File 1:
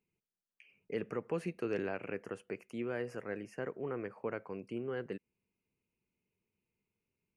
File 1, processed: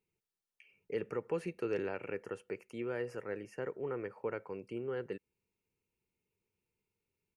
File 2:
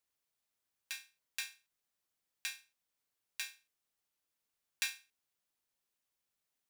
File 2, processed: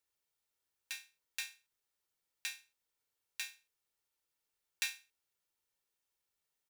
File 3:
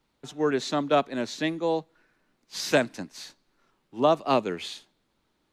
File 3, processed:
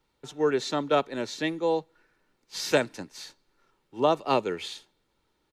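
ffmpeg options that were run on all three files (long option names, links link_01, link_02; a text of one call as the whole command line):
ffmpeg -i in.wav -af "aecho=1:1:2.2:0.35,volume=-1dB" out.wav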